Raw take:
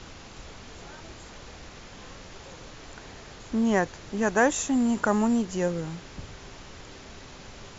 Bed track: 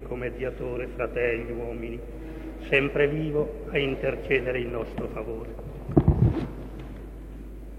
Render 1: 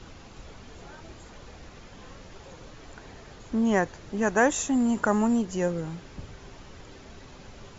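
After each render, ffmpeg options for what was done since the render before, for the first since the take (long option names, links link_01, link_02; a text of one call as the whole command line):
ffmpeg -i in.wav -af "afftdn=noise_reduction=6:noise_floor=-46" out.wav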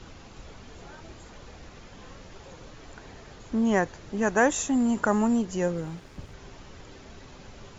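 ffmpeg -i in.wav -filter_complex "[0:a]asettb=1/sr,asplit=3[link_01][link_02][link_03];[link_01]atrim=end=5.764[link_04];[link_02]atrim=start=5.76:end=6.34,asetpts=PTS-STARTPTS,afade=type=in:duration=0.004:curve=qsin,afade=type=out:start_time=0.576:duration=0.004:curve=qsin,aeval=exprs='sgn(val(0))*max(abs(val(0))-0.00178,0)':channel_layout=same[link_05];[link_03]atrim=start=6.336[link_06];[link_04][link_05]acrossfade=duration=0.004:curve1=hsin:curve2=qsin[link_07];[link_07][link_06]acrossfade=duration=0.004:curve1=qsin:curve2=hsin" out.wav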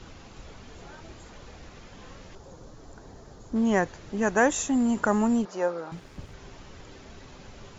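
ffmpeg -i in.wav -filter_complex "[0:a]asettb=1/sr,asplit=3[link_01][link_02][link_03];[link_01]atrim=end=2.354[link_04];[link_02]atrim=start=2.35:end=3.56,asetpts=PTS-STARTPTS,afade=type=in:duration=0.004:curve=qsin,afade=type=out:start_time=1.206:duration=0.004:curve=qsin,equalizer=frequency=2500:width=0.98:gain=-13.5[link_05];[link_03]atrim=start=3.556[link_06];[link_04][link_05]acrossfade=duration=0.004:curve1=hsin:curve2=qsin[link_07];[link_07][link_06]acrossfade=duration=0.004:curve1=qsin:curve2=hsin,asettb=1/sr,asplit=3[link_08][link_09][link_10];[link_08]atrim=end=5.454[link_11];[link_09]atrim=start=5.45:end=5.92,asetpts=PTS-STARTPTS,afade=type=in:duration=0.004:curve=qsin,afade=type=out:start_time=0.466:duration=0.004:curve=qsin,highpass=400,equalizer=frequency=610:width_type=q:width=4:gain=6,equalizer=frequency=870:width_type=q:width=4:gain=6,equalizer=frequency=1300:width_type=q:width=4:gain=9,equalizer=frequency=2000:width_type=q:width=4:gain=-4,equalizer=frequency=3000:width_type=q:width=4:gain=-7,lowpass=frequency=5500:width=0.5412,lowpass=frequency=5500:width=1.3066[link_12];[link_10]atrim=start=5.916[link_13];[link_11][link_12]acrossfade=duration=0.004:curve1=hsin:curve2=qsin[link_14];[link_14][link_13]acrossfade=duration=0.004:curve1=qsin:curve2=hsin" out.wav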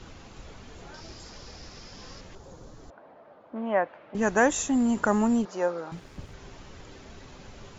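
ffmpeg -i in.wav -filter_complex "[0:a]asettb=1/sr,asplit=3[link_01][link_02][link_03];[link_01]atrim=end=0.944[link_04];[link_02]atrim=start=0.94:end=2.21,asetpts=PTS-STARTPTS,afade=type=in:duration=0.004:curve=qsin,afade=type=out:start_time=1.266:duration=0.004:curve=qsin,equalizer=frequency=5100:width_type=o:width=0.49:gain=14[link_05];[link_03]atrim=start=2.206[link_06];[link_04][link_05]acrossfade=duration=0.004:curve1=hsin:curve2=qsin[link_07];[link_07][link_06]acrossfade=duration=0.004:curve1=qsin:curve2=hsin,asettb=1/sr,asplit=3[link_08][link_09][link_10];[link_08]atrim=end=2.904[link_11];[link_09]atrim=start=2.9:end=4.15,asetpts=PTS-STARTPTS,afade=type=in:duration=0.004:curve=qsin,afade=type=out:start_time=1.246:duration=0.004:curve=qsin,highpass=380,equalizer=frequency=400:width_type=q:width=4:gain=-9,equalizer=frequency=600:width_type=q:width=4:gain=7,equalizer=frequency=1800:width_type=q:width=4:gain=-4,lowpass=frequency=2500:width=0.5412,lowpass=frequency=2500:width=1.3066[link_12];[link_10]atrim=start=4.146[link_13];[link_11][link_12]acrossfade=duration=0.004:curve1=hsin:curve2=qsin[link_14];[link_14][link_13]acrossfade=duration=0.004:curve1=qsin:curve2=hsin" out.wav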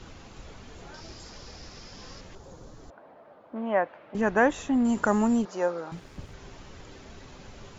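ffmpeg -i in.wav -filter_complex "[0:a]asettb=1/sr,asplit=3[link_01][link_02][link_03];[link_01]atrim=end=4.214[link_04];[link_02]atrim=start=4.21:end=4.85,asetpts=PTS-STARTPTS,afade=type=in:duration=0.004:curve=qsin,afade=type=out:start_time=0.636:duration=0.004:curve=qsin,lowpass=3200[link_05];[link_03]atrim=start=4.846[link_06];[link_04][link_05]acrossfade=duration=0.004:curve1=hsin:curve2=qsin[link_07];[link_07][link_06]acrossfade=duration=0.004:curve1=qsin:curve2=hsin" out.wav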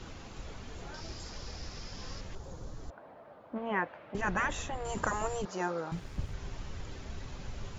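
ffmpeg -i in.wav -af "afftfilt=real='re*lt(hypot(re,im),0.282)':imag='im*lt(hypot(re,im),0.282)':win_size=1024:overlap=0.75,asubboost=boost=2:cutoff=170" out.wav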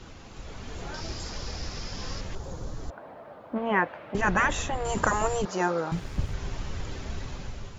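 ffmpeg -i in.wav -af "dynaudnorm=framelen=230:gausssize=5:maxgain=7.5dB" out.wav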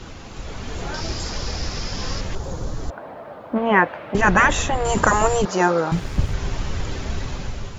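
ffmpeg -i in.wav -af "volume=8.5dB,alimiter=limit=-1dB:level=0:latency=1" out.wav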